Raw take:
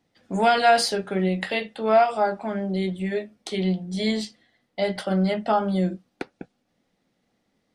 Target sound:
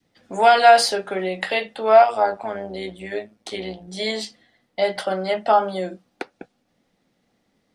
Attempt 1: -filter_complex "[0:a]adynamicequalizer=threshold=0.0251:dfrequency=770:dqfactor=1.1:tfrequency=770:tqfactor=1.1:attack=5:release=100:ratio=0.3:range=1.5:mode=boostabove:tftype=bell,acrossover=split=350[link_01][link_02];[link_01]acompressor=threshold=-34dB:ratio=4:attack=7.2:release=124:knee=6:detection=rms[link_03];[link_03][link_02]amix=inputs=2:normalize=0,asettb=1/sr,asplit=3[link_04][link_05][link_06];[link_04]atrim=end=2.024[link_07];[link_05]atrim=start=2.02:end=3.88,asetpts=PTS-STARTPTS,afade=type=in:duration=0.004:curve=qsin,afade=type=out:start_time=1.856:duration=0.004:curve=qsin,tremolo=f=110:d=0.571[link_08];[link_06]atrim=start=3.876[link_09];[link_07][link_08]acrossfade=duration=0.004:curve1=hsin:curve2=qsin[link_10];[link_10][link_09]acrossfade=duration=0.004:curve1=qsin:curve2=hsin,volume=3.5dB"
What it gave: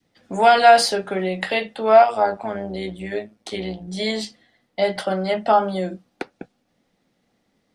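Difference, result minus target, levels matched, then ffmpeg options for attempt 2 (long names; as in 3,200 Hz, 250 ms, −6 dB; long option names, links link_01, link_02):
downward compressor: peak gain reduction −8.5 dB
-filter_complex "[0:a]adynamicequalizer=threshold=0.0251:dfrequency=770:dqfactor=1.1:tfrequency=770:tqfactor=1.1:attack=5:release=100:ratio=0.3:range=1.5:mode=boostabove:tftype=bell,acrossover=split=350[link_01][link_02];[link_01]acompressor=threshold=-45dB:ratio=4:attack=7.2:release=124:knee=6:detection=rms[link_03];[link_03][link_02]amix=inputs=2:normalize=0,asettb=1/sr,asplit=3[link_04][link_05][link_06];[link_04]atrim=end=2.024[link_07];[link_05]atrim=start=2.02:end=3.88,asetpts=PTS-STARTPTS,afade=type=in:duration=0.004:curve=qsin,afade=type=out:start_time=1.856:duration=0.004:curve=qsin,tremolo=f=110:d=0.571[link_08];[link_06]atrim=start=3.876[link_09];[link_07][link_08]acrossfade=duration=0.004:curve1=hsin:curve2=qsin[link_10];[link_10][link_09]acrossfade=duration=0.004:curve1=qsin:curve2=hsin,volume=3.5dB"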